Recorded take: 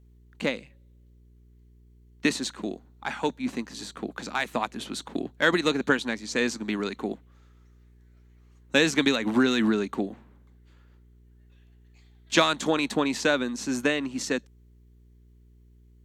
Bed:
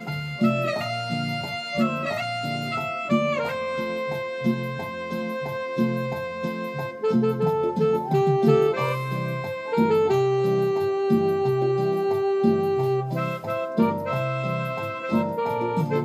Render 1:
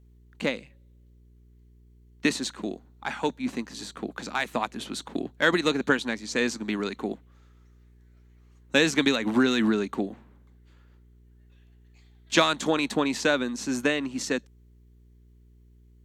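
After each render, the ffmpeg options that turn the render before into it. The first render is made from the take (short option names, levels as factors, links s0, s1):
-af anull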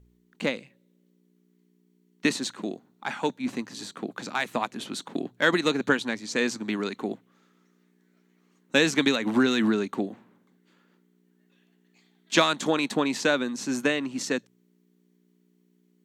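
-af "bandreject=f=60:t=h:w=4,bandreject=f=120:t=h:w=4"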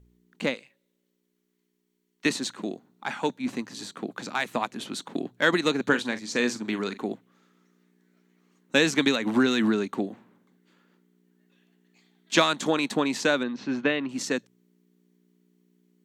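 -filter_complex "[0:a]asettb=1/sr,asplit=3[s0][s1][s2];[s0]atrim=end=0.544[s3];[s1]atrim=start=0.54:end=2.26,asetpts=PTS-STARTPTS,afade=t=in:d=0.004:c=qsin,afade=t=out:st=1.716:d=0.004:c=qsin,equalizer=f=140:w=0.43:g=-14.5[s4];[s2]atrim=start=2.256[s5];[s3][s4]acrossfade=d=0.004:c1=hsin:c2=qsin[s6];[s6][s5]acrossfade=d=0.004:c1=qsin:c2=hsin,asettb=1/sr,asplit=3[s7][s8][s9];[s7]atrim=end=5.864[s10];[s8]atrim=start=5.86:end=7.03,asetpts=PTS-STARTPTS,afade=t=in:d=0.004:c=qsin,afade=t=out:st=1.166:d=0.004:c=qsin,asplit=2[s11][s12];[s12]adelay=41,volume=0.251[s13];[s11][s13]amix=inputs=2:normalize=0,atrim=end_sample=51597[s14];[s9]atrim=start=7.026[s15];[s10][s14]acrossfade=d=0.004:c1=hsin:c2=qsin[s16];[s16][s15]acrossfade=d=0.004:c1=qsin:c2=hsin,asettb=1/sr,asplit=3[s17][s18][s19];[s17]atrim=end=13.434[s20];[s18]atrim=start=13.43:end=14.09,asetpts=PTS-STARTPTS,afade=t=in:d=0.004:c=qsin,afade=t=out:st=0.656:d=0.004:c=qsin,lowpass=f=3900:w=0.5412,lowpass=f=3900:w=1.3066[s21];[s19]atrim=start=14.086[s22];[s20][s21]acrossfade=d=0.004:c1=hsin:c2=qsin[s23];[s23][s22]acrossfade=d=0.004:c1=qsin:c2=hsin"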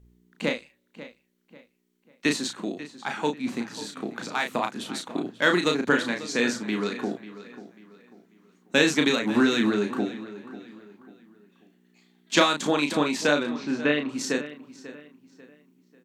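-filter_complex "[0:a]asplit=2[s0][s1];[s1]adelay=34,volume=0.562[s2];[s0][s2]amix=inputs=2:normalize=0,asplit=2[s3][s4];[s4]adelay=542,lowpass=f=4100:p=1,volume=0.178,asplit=2[s5][s6];[s6]adelay=542,lowpass=f=4100:p=1,volume=0.37,asplit=2[s7][s8];[s8]adelay=542,lowpass=f=4100:p=1,volume=0.37[s9];[s3][s5][s7][s9]amix=inputs=4:normalize=0"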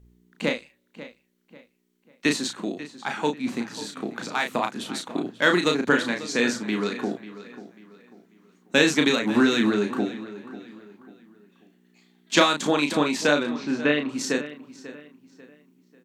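-af "volume=1.19"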